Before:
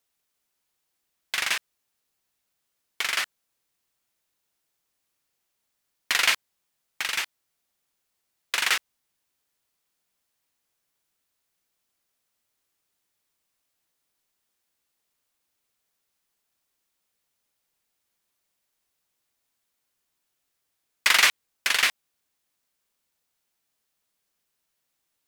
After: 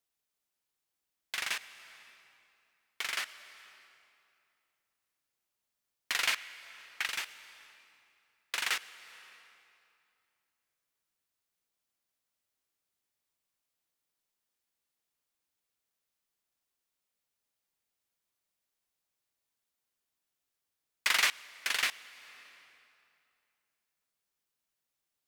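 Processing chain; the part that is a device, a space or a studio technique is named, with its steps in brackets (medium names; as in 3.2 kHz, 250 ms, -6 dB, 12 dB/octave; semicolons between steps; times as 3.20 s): compressed reverb return (on a send at -10 dB: reverberation RT60 2.5 s, pre-delay 99 ms + compression 8:1, threshold -30 dBFS, peak gain reduction 12.5 dB); 6.33–7.06 s: on the sum: dynamic bell 1.9 kHz, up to +6 dB, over -45 dBFS, Q 0.8; trim -8.5 dB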